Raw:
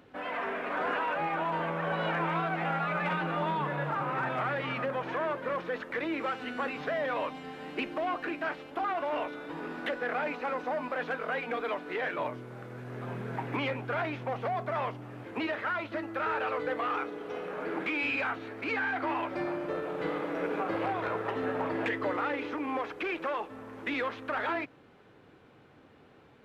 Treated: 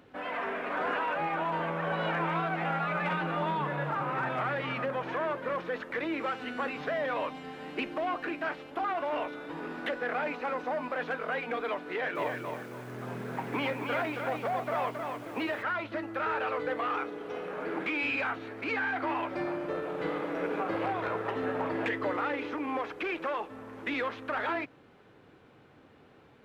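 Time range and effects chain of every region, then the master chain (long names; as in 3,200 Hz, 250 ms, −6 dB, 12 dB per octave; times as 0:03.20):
0:11.88–0:15.63: high-pass filter 80 Hz + feedback echo at a low word length 272 ms, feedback 35%, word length 9 bits, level −4.5 dB
whole clip: no processing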